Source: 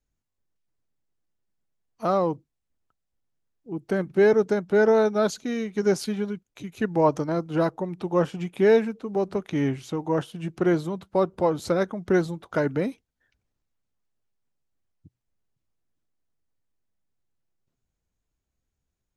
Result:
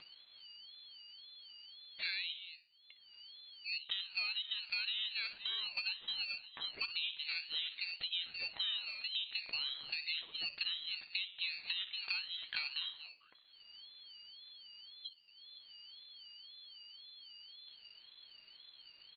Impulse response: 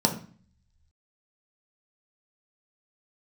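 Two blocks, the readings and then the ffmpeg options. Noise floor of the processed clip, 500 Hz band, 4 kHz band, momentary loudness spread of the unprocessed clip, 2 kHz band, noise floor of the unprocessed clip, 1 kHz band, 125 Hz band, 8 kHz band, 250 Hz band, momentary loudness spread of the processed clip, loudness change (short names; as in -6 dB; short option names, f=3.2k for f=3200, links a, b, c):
-64 dBFS, under -40 dB, +9.0 dB, 11 LU, -7.0 dB, -82 dBFS, -29.0 dB, under -40 dB, under -35 dB, under -40 dB, 18 LU, -14.0 dB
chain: -filter_complex "[0:a]lowpass=f=3.2k:t=q:w=0.5098,lowpass=f=3.2k:t=q:w=0.6013,lowpass=f=3.2k:t=q:w=0.9,lowpass=f=3.2k:t=q:w=2.563,afreqshift=-3800,acompressor=mode=upward:threshold=-28dB:ratio=2.5,asplit=2[a][b];[b]adelay=60,lowpass=f=2.7k:p=1,volume=-12dB,asplit=2[c][d];[d]adelay=60,lowpass=f=2.7k:p=1,volume=0.52,asplit=2[e][f];[f]adelay=60,lowpass=f=2.7k:p=1,volume=0.52,asplit=2[g][h];[h]adelay=60,lowpass=f=2.7k:p=1,volume=0.52,asplit=2[i][j];[j]adelay=60,lowpass=f=2.7k:p=1,volume=0.52[k];[c][e][g][i][k]amix=inputs=5:normalize=0[l];[a][l]amix=inputs=2:normalize=0,flanger=delay=7.6:depth=7.8:regen=83:speed=0.37:shape=triangular,asplit=2[m][n];[n]aecho=0:1:232:0.1[o];[m][o]amix=inputs=2:normalize=0,acompressor=threshold=-33dB:ratio=12,aeval=exprs='val(0)*sin(2*PI*630*n/s+630*0.5/1.9*sin(2*PI*1.9*n/s))':c=same"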